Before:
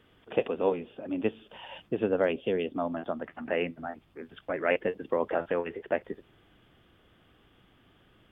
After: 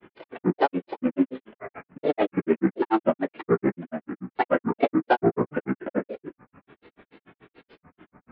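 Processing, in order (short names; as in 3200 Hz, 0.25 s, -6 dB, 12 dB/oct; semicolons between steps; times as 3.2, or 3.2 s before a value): CVSD 16 kbps; reverb RT60 0.15 s, pre-delay 3 ms, DRR -2 dB; grains 0.1 s, grains 6.9/s, pitch spread up and down by 7 st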